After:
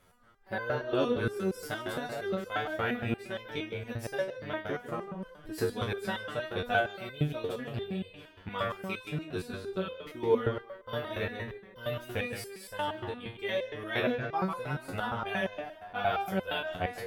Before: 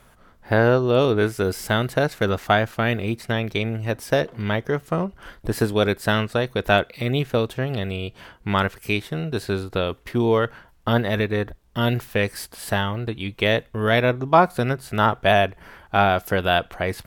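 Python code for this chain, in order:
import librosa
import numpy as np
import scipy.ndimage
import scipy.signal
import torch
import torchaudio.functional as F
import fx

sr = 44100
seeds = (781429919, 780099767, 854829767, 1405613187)

y = fx.echo_tape(x, sr, ms=151, feedback_pct=44, wet_db=-5.0, lp_hz=3300.0, drive_db=8.0, wow_cents=24)
y = fx.resonator_held(y, sr, hz=8.6, low_hz=91.0, high_hz=510.0)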